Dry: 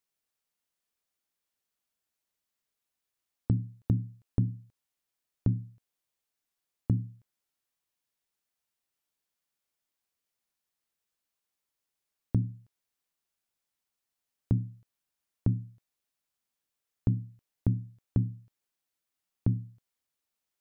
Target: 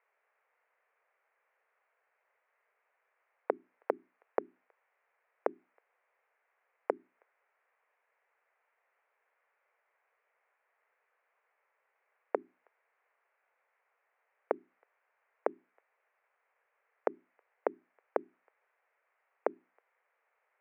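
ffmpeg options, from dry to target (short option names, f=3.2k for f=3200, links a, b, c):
-af "asuperpass=centerf=1000:order=12:qfactor=0.54,volume=18dB"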